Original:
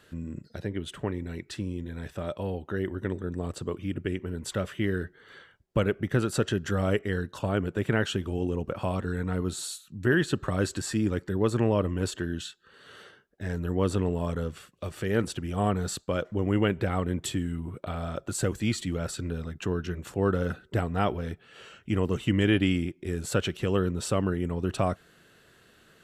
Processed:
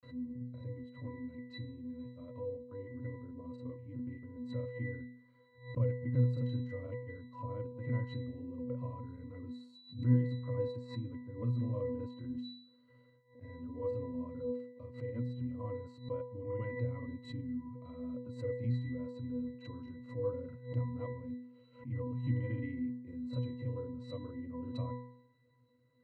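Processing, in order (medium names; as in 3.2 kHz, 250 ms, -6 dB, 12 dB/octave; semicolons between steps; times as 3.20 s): granulator, spray 29 ms, pitch spread up and down by 0 st; pitch-class resonator B, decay 0.66 s; swell ahead of each attack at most 140 dB/s; trim +9 dB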